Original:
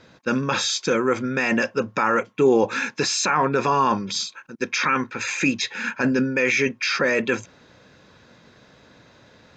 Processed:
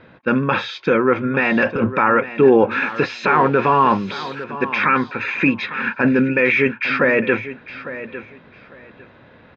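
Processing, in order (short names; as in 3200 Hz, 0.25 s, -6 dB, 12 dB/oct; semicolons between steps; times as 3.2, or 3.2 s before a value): 2.71–4.44 switching spikes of -24 dBFS; LPF 2900 Hz 24 dB/oct; 1.42–1.93 transient shaper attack -9 dB, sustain +11 dB; on a send: feedback echo 0.853 s, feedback 20%, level -14 dB; on the sum: gain +5 dB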